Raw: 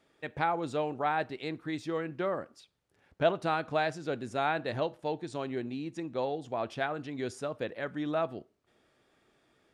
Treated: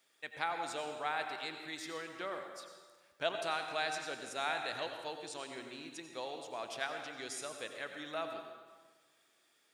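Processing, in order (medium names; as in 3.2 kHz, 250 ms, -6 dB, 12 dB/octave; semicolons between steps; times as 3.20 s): tilt EQ +4.5 dB/octave; on a send: reverberation RT60 1.5 s, pre-delay 78 ms, DRR 5 dB; on the sum: trim -7 dB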